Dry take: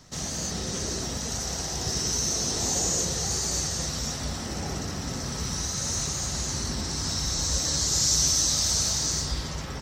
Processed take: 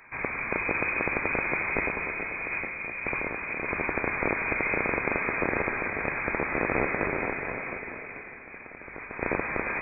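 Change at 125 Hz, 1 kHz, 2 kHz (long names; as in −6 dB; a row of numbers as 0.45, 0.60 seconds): −9.0, +6.0, +14.0 decibels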